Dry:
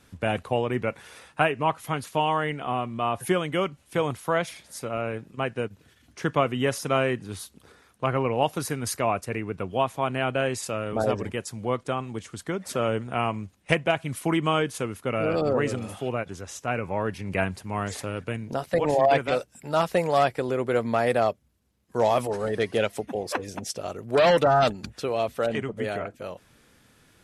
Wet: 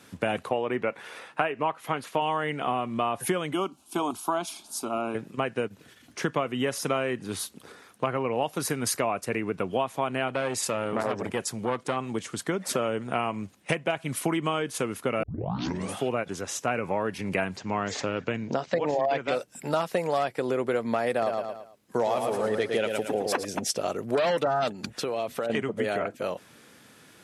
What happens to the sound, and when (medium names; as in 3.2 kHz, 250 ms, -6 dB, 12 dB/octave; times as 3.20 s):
0.49–2.22 s: tone controls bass -6 dB, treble -9 dB
3.53–5.15 s: static phaser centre 510 Hz, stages 6
10.28–11.97 s: transformer saturation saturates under 1.1 kHz
15.23 s: tape start 0.71 s
17.57–19.28 s: steep low-pass 7.1 kHz 48 dB/octave
21.11–23.45 s: feedback delay 111 ms, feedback 31%, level -6 dB
24.94–25.50 s: compression, threshold -31 dBFS
whole clip: compression, threshold -29 dBFS; high-pass 160 Hz 12 dB/octave; trim +6 dB